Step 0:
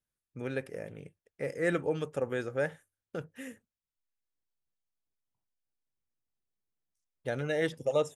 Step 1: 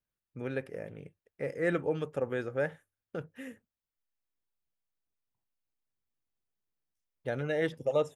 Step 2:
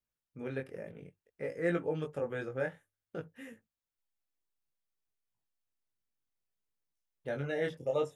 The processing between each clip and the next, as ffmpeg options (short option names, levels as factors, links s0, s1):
-af "equalizer=f=8000:t=o:w=1.7:g=-8.5"
-af "flanger=delay=17.5:depth=5.8:speed=0.58"